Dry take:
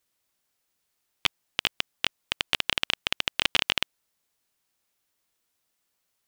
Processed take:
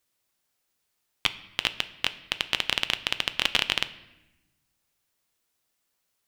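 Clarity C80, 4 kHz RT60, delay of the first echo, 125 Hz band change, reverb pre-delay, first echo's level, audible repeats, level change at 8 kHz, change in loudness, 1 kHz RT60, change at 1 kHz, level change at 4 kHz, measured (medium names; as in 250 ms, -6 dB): 18.0 dB, 0.80 s, no echo, +1.0 dB, 8 ms, no echo, no echo, 0.0 dB, +0.5 dB, 0.90 s, +0.5 dB, +0.5 dB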